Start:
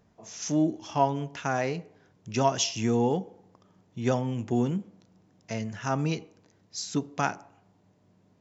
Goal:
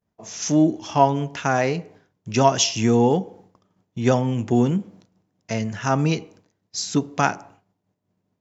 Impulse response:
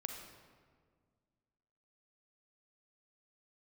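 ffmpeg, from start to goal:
-af "agate=range=-33dB:threshold=-51dB:ratio=3:detection=peak,volume=7.5dB"

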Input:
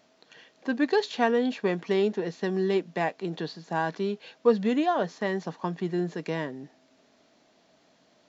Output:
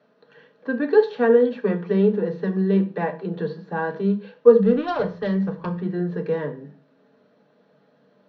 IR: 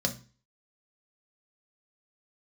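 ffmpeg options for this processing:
-filter_complex "[0:a]acrossover=split=160 2400:gain=0.0891 1 0.0794[link_01][link_02][link_03];[link_01][link_02][link_03]amix=inputs=3:normalize=0,asettb=1/sr,asplit=3[link_04][link_05][link_06];[link_04]atrim=end=4.624[link_07];[link_05]atrim=start=4.62:end=5.82,asetpts=PTS-STARTPTS,afade=type=in:duration=0.004:curve=qsin,afade=type=out:start_time=1.196:duration=0.004:curve=qsin,aeval=exprs='0.178*(cos(1*acos(clip(val(0)/0.178,-1,1)))-cos(1*PI/2))+0.0112*(cos(3*acos(clip(val(0)/0.178,-1,1)))-cos(3*PI/2))+0.0141*(cos(6*acos(clip(val(0)/0.178,-1,1)))-cos(6*PI/2))':channel_layout=same[link_08];[link_06]atrim=start=5.816[link_09];[link_07][link_08]acrossfade=duration=0.004:curve1=hsin:curve2=qsin[link_10];[link_10][link_09]acrossfade=duration=0.004:curve1=qsin:curve2=hsin[link_11];[1:a]atrim=start_sample=2205,atrim=end_sample=6615,asetrate=37044,aresample=44100[link_12];[link_11][link_12]afir=irnorm=-1:irlink=0,volume=-5dB"

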